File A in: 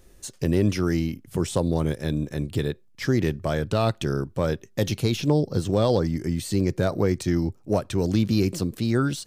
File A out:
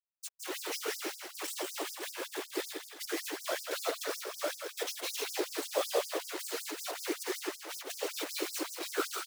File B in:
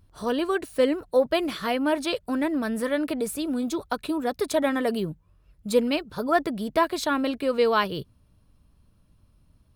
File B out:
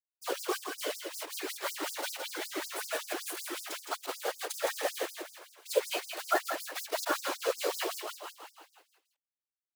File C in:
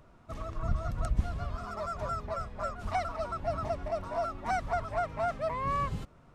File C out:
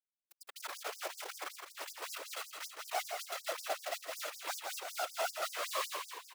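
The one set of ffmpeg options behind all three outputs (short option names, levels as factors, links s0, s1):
-filter_complex "[0:a]acrusher=bits=4:mix=0:aa=0.000001,afftfilt=real='hypot(re,im)*cos(2*PI*random(0))':imag='hypot(re,im)*sin(2*PI*random(1))':win_size=512:overlap=0.75,asplit=2[s0][s1];[s1]asplit=7[s2][s3][s4][s5][s6][s7][s8];[s2]adelay=163,afreqshift=-39,volume=0.531[s9];[s3]adelay=326,afreqshift=-78,volume=0.292[s10];[s4]adelay=489,afreqshift=-117,volume=0.16[s11];[s5]adelay=652,afreqshift=-156,volume=0.0881[s12];[s6]adelay=815,afreqshift=-195,volume=0.0484[s13];[s7]adelay=978,afreqshift=-234,volume=0.0266[s14];[s8]adelay=1141,afreqshift=-273,volume=0.0146[s15];[s9][s10][s11][s12][s13][s14][s15]amix=inputs=7:normalize=0[s16];[s0][s16]amix=inputs=2:normalize=0,afftfilt=real='re*gte(b*sr/1024,290*pow(4900/290,0.5+0.5*sin(2*PI*5.3*pts/sr)))':imag='im*gte(b*sr/1024,290*pow(4900/290,0.5+0.5*sin(2*PI*5.3*pts/sr)))':win_size=1024:overlap=0.75"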